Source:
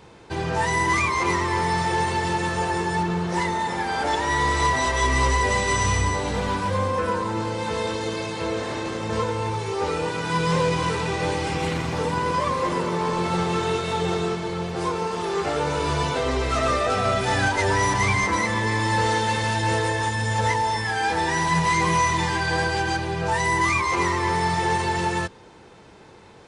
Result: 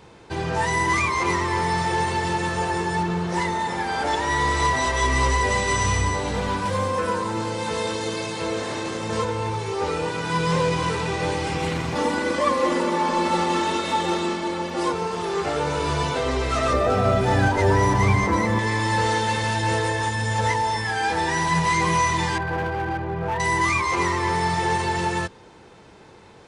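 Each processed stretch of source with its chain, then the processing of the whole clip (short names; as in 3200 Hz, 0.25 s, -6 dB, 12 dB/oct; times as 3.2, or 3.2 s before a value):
6.65–9.25 HPF 85 Hz + high shelf 5800 Hz +7 dB
11.95–14.93 resonant low shelf 160 Hz -8 dB, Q 1.5 + comb 3.5 ms, depth 99%
16.73–18.59 tilt shelf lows +6 dB, about 1100 Hz + short-mantissa float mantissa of 6-bit
22.38–23.4 LPF 1400 Hz + hard clip -21 dBFS
whole clip: dry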